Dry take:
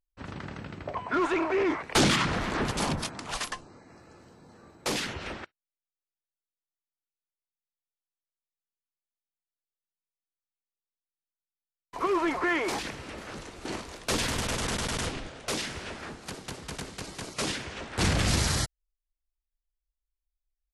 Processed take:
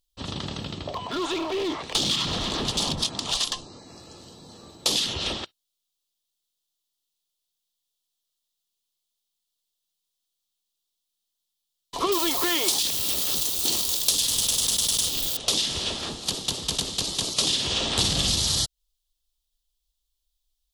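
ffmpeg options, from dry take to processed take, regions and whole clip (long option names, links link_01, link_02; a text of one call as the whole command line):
ffmpeg -i in.wav -filter_complex "[0:a]asettb=1/sr,asplit=3[link_01][link_02][link_03];[link_01]atrim=end=0.724[link_04];[link_02]atrim=start=0.72:end=3.79,asetpts=PTS-STARTPTS,afade=type=in:duration=0.004:curve=qsin,afade=type=out:start_time=3.066:duration=0.004:curve=qsin,lowpass=8800,acompressor=threshold=-35dB:ratio=2:attack=3.2:release=140:knee=1:detection=peak,aeval=exprs='clip(val(0),-1,0.0316)':channel_layout=same[link_05];[link_03]atrim=start=3.786[link_06];[link_04][link_05]acrossfade=duration=0.004:curve1=hsin:curve2=qsin[link_07];[link_07][link_06]acrossfade=duration=0.004:curve1=qsin:curve2=hsin,asettb=1/sr,asplit=3[link_08][link_09][link_10];[link_08]atrim=end=12.124[link_11];[link_09]atrim=start=12.12:end=15.37,asetpts=PTS-STARTPTS,afade=type=in:duration=0.004:curve=qsin,afade=type=out:start_time=3.246:duration=0.004:curve=qsin,acrusher=bits=9:dc=4:mix=0:aa=0.000001,aemphasis=mode=production:type=75fm[link_12];[link_10]atrim=start=15.366[link_13];[link_11][link_12]acrossfade=duration=0.004:curve1=hsin:curve2=qsin[link_14];[link_14][link_13]acrossfade=duration=0.004:curve1=qsin:curve2=hsin,asettb=1/sr,asplit=3[link_15][link_16][link_17];[link_15]atrim=end=17.474[link_18];[link_16]atrim=start=17.47:end=18.33,asetpts=PTS-STARTPTS,afade=type=in:duration=0.004:curve=qsin,afade=type=out:start_time=0.856:duration=0.004:curve=qsin,asplit=2[link_19][link_20];[link_20]adelay=50,volume=-4.5dB[link_21];[link_19][link_21]amix=inputs=2:normalize=0,atrim=end_sample=37926,acompressor=mode=upward:threshold=-27dB:ratio=2.5:attack=3.2:release=140:knee=2.83:detection=peak[link_22];[link_17]atrim=start=18.326[link_23];[link_18][link_22]acrossfade=duration=0.004:curve1=hsin:curve2=qsin[link_24];[link_24][link_23]acrossfade=duration=0.004:curve1=qsin:curve2=hsin,highshelf=frequency=2700:width_type=q:width=3:gain=8,bandreject=frequency=1500:width=8,acompressor=threshold=-26dB:ratio=12,volume=6dB" out.wav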